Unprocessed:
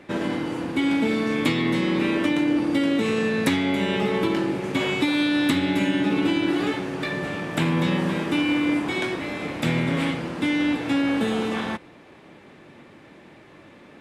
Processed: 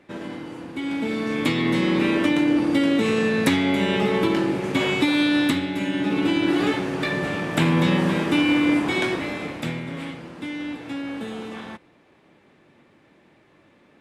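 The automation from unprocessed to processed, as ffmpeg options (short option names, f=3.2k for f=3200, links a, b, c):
-af "volume=10dB,afade=t=in:st=0.75:d=1.09:silence=0.334965,afade=t=out:st=5.38:d=0.32:silence=0.446684,afade=t=in:st=5.7:d=0.97:silence=0.398107,afade=t=out:st=9.14:d=0.66:silence=0.266073"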